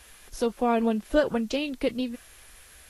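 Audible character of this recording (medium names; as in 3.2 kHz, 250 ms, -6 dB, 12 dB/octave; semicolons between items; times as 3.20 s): a quantiser's noise floor 10-bit, dither triangular; Vorbis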